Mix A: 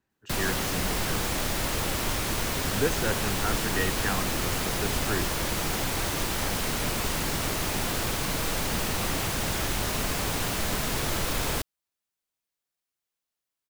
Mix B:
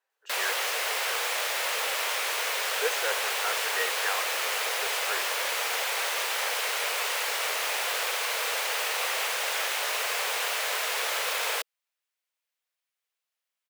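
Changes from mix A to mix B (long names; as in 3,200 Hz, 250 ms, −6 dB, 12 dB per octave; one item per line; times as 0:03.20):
background: add parametric band 2,400 Hz +6 dB 1.4 octaves
master: add elliptic high-pass filter 470 Hz, stop band 60 dB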